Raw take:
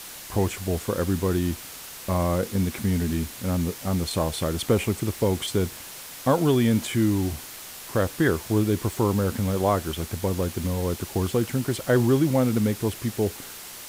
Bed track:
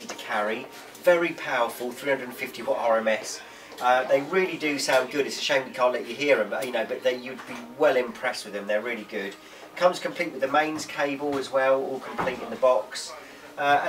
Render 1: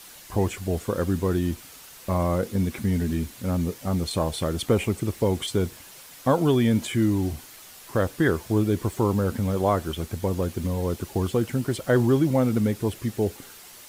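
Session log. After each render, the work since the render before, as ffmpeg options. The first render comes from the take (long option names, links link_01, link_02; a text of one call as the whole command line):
ffmpeg -i in.wav -af "afftdn=noise_reduction=7:noise_floor=-40" out.wav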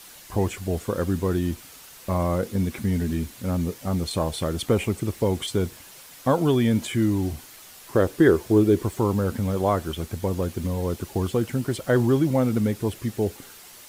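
ffmpeg -i in.wav -filter_complex "[0:a]asettb=1/sr,asplit=3[link_01][link_02][link_03];[link_01]atrim=end=7.954[link_04];[link_02]atrim=start=7.95:end=8.83,asetpts=PTS-STARTPTS,afade=type=in:duration=0.004:curve=qsin,afade=type=out:start_time=0.876:duration=0.004:curve=qsin,equalizer=frequency=380:width_type=o:width=0.77:gain=8.5[link_05];[link_03]atrim=start=8.826[link_06];[link_04][link_05]acrossfade=duration=0.004:curve1=hsin:curve2=qsin[link_07];[link_07][link_06]acrossfade=duration=0.004:curve1=qsin:curve2=hsin" out.wav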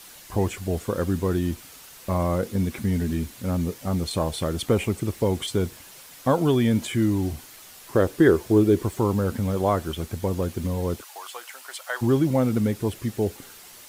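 ffmpeg -i in.wav -filter_complex "[0:a]asplit=3[link_01][link_02][link_03];[link_01]afade=type=out:start_time=11:duration=0.02[link_04];[link_02]highpass=frequency=800:width=0.5412,highpass=frequency=800:width=1.3066,afade=type=in:start_time=11:duration=0.02,afade=type=out:start_time=12.01:duration=0.02[link_05];[link_03]afade=type=in:start_time=12.01:duration=0.02[link_06];[link_04][link_05][link_06]amix=inputs=3:normalize=0" out.wav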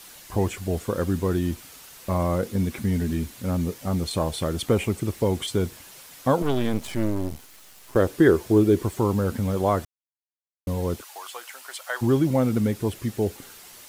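ffmpeg -i in.wav -filter_complex "[0:a]asettb=1/sr,asplit=3[link_01][link_02][link_03];[link_01]atrim=end=6.424[link_04];[link_02]atrim=start=6.42:end=7.96,asetpts=PTS-STARTPTS,afade=type=in:duration=0.004:curve=qsin,afade=type=out:start_time=1.536:duration=0.004:curve=qsin,aeval=exprs='max(val(0),0)':channel_layout=same[link_05];[link_03]atrim=start=7.956[link_06];[link_04][link_05]acrossfade=duration=0.004:curve1=hsin:curve2=qsin[link_07];[link_07][link_06]acrossfade=duration=0.004:curve1=qsin:curve2=hsin,asplit=3[link_08][link_09][link_10];[link_08]atrim=end=9.85,asetpts=PTS-STARTPTS,afade=type=out:start_time=9.846:duration=0.004:curve=hsin[link_11];[link_09]atrim=start=9.85:end=10.67,asetpts=PTS-STARTPTS,volume=0[link_12];[link_10]atrim=start=10.67,asetpts=PTS-STARTPTS,afade=type=in:duration=0.004:curve=hsin[link_13];[link_11][link_12][link_13]concat=n=3:v=0:a=1" out.wav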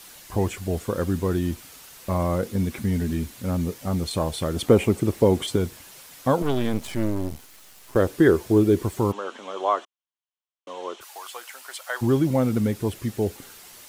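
ffmpeg -i in.wav -filter_complex "[0:a]asettb=1/sr,asplit=3[link_01][link_02][link_03];[link_01]atrim=end=4.564[link_04];[link_02]atrim=start=4.56:end=5.56,asetpts=PTS-STARTPTS,afade=type=in:duration=0.004:curve=qsin,afade=type=out:start_time=0.996:duration=0.004:curve=qsin,equalizer=frequency=390:width_type=o:width=2.9:gain=6[link_05];[link_03]atrim=start=5.556[link_06];[link_04][link_05]acrossfade=duration=0.004:curve1=hsin:curve2=qsin[link_07];[link_07][link_06]acrossfade=duration=0.004:curve1=qsin:curve2=hsin,asplit=3[link_08][link_09][link_10];[link_08]afade=type=out:start_time=9.11:duration=0.02[link_11];[link_09]highpass=frequency=400:width=0.5412,highpass=frequency=400:width=1.3066,equalizer=frequency=480:width_type=q:width=4:gain=-6,equalizer=frequency=1100:width_type=q:width=4:gain=6,equalizer=frequency=2000:width_type=q:width=4:gain=-3,equalizer=frequency=3100:width_type=q:width=4:gain=8,equalizer=frequency=4800:width_type=q:width=4:gain=-10,lowpass=frequency=6400:width=0.5412,lowpass=frequency=6400:width=1.3066,afade=type=in:start_time=9.11:duration=0.02,afade=type=out:start_time=11:duration=0.02[link_12];[link_10]afade=type=in:start_time=11:duration=0.02[link_13];[link_11][link_12][link_13]amix=inputs=3:normalize=0" out.wav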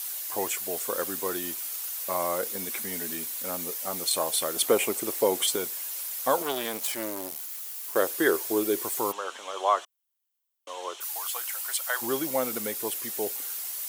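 ffmpeg -i in.wav -af "highpass=540,aemphasis=mode=production:type=50fm" out.wav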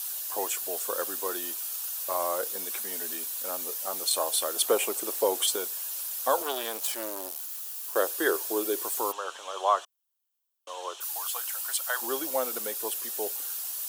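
ffmpeg -i in.wav -af "highpass=410,equalizer=frequency=2100:width_type=o:width=0.28:gain=-9.5" out.wav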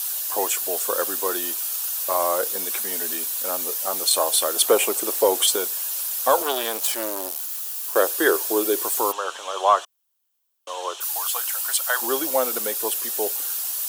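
ffmpeg -i in.wav -af "acontrast=90" out.wav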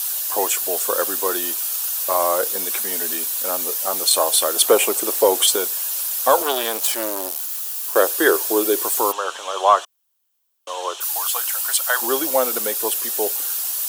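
ffmpeg -i in.wav -af "volume=3dB" out.wav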